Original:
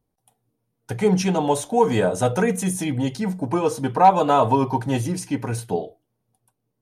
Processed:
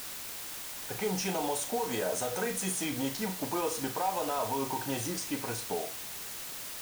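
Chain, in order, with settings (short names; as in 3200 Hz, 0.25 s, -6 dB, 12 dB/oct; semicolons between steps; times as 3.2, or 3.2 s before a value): low-pass opened by the level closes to 2300 Hz, open at -16.5 dBFS; tone controls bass -12 dB, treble +5 dB; compressor, threshold -19 dBFS, peak gain reduction 10.5 dB; limiter -18.5 dBFS, peak gain reduction 7.5 dB; flutter echo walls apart 6.3 m, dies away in 0.25 s; requantised 6-bit, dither triangular; gain -5 dB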